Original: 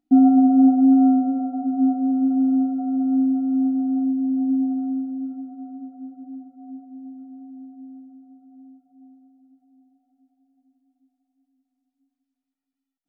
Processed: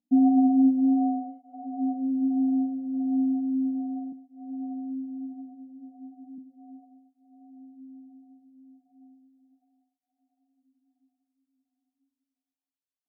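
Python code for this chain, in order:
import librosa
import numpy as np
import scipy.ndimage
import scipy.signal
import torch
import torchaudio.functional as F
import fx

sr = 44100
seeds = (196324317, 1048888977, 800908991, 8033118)

y = fx.highpass(x, sr, hz=230.0, slope=12, at=(4.12, 6.38))
y = fx.fixed_phaser(y, sr, hz=380.0, stages=6)
y = fx.flanger_cancel(y, sr, hz=0.35, depth_ms=2.8)
y = F.gain(torch.from_numpy(y), -4.0).numpy()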